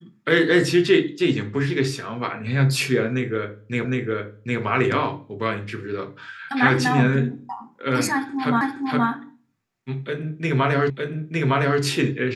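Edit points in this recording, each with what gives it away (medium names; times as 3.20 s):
3.85 s: repeat of the last 0.76 s
8.61 s: repeat of the last 0.47 s
10.90 s: repeat of the last 0.91 s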